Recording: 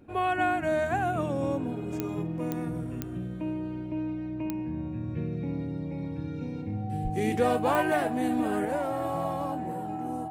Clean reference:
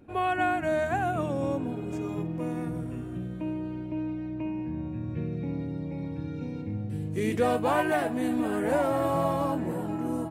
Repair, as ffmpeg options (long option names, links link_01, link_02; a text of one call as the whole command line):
ffmpeg -i in.wav -filter_complex "[0:a]adeclick=threshold=4,bandreject=frequency=760:width=30,asplit=3[link_01][link_02][link_03];[link_01]afade=type=out:start_time=7.03:duration=0.02[link_04];[link_02]highpass=frequency=140:width=0.5412,highpass=frequency=140:width=1.3066,afade=type=in:start_time=7.03:duration=0.02,afade=type=out:start_time=7.15:duration=0.02[link_05];[link_03]afade=type=in:start_time=7.15:duration=0.02[link_06];[link_04][link_05][link_06]amix=inputs=3:normalize=0,asetnsamples=nb_out_samples=441:pad=0,asendcmd='8.65 volume volume 5dB',volume=0dB" out.wav